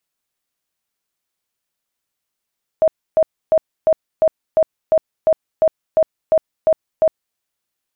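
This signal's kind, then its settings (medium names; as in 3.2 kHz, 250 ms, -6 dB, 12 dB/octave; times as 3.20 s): tone bursts 636 Hz, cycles 37, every 0.35 s, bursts 13, -9 dBFS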